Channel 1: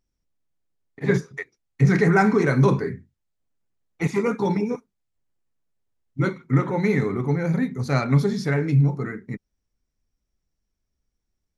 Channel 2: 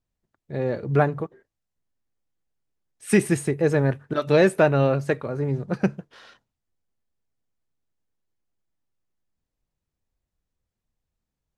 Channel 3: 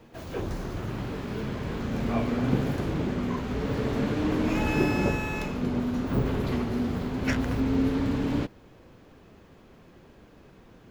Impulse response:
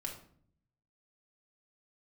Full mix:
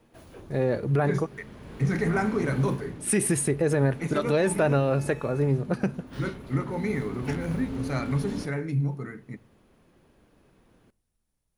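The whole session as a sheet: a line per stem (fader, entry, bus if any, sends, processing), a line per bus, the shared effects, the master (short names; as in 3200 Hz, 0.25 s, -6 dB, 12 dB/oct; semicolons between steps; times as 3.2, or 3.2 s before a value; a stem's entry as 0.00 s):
-9.0 dB, 0.00 s, send -14 dB, dry
+1.5 dB, 0.00 s, no send, dry
-9.0 dB, 0.00 s, send -17 dB, auto duck -9 dB, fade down 0.35 s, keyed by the second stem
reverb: on, RT60 0.55 s, pre-delay 3 ms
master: bell 9800 Hz +15 dB 0.23 oct; limiter -14.5 dBFS, peak gain reduction 10 dB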